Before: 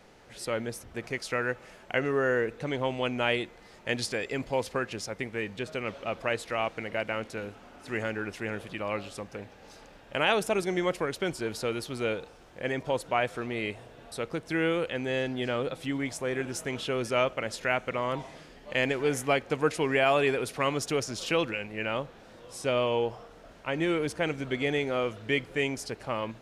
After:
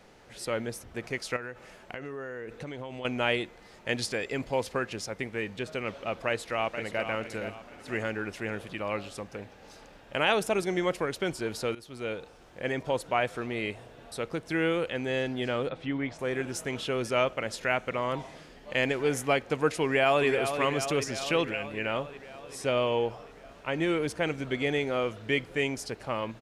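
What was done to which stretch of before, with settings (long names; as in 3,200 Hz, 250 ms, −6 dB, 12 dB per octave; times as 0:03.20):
0:01.36–0:03.05: downward compressor 12 to 1, threshold −34 dBFS
0:06.26–0:07.05: delay throw 470 ms, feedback 35%, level −8.5 dB
0:11.75–0:12.66: fade in equal-power, from −16 dB
0:15.69–0:16.19: low-pass filter 3,100 Hz
0:19.83–0:20.27: delay throw 380 ms, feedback 70%, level −8 dB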